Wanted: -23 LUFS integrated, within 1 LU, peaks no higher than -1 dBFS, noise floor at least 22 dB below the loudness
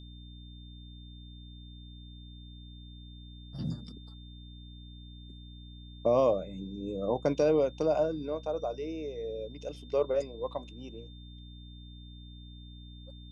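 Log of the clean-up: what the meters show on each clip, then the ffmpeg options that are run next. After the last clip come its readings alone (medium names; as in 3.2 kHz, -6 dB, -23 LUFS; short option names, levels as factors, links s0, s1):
hum 60 Hz; highest harmonic 300 Hz; hum level -45 dBFS; steady tone 3.6 kHz; tone level -55 dBFS; loudness -31.5 LUFS; peak level -15.0 dBFS; loudness target -23.0 LUFS
-> -af "bandreject=f=60:t=h:w=4,bandreject=f=120:t=h:w=4,bandreject=f=180:t=h:w=4,bandreject=f=240:t=h:w=4,bandreject=f=300:t=h:w=4"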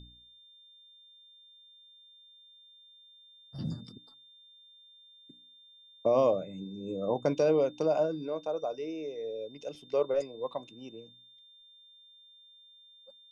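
hum not found; steady tone 3.6 kHz; tone level -55 dBFS
-> -af "bandreject=f=3600:w=30"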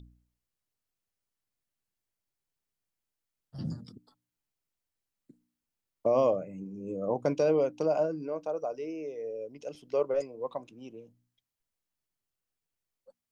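steady tone not found; loudness -31.5 LUFS; peak level -15.0 dBFS; loudness target -23.0 LUFS
-> -af "volume=2.66"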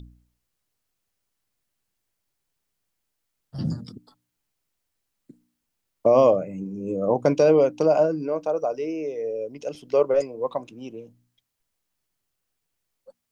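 loudness -23.0 LUFS; peak level -6.5 dBFS; noise floor -80 dBFS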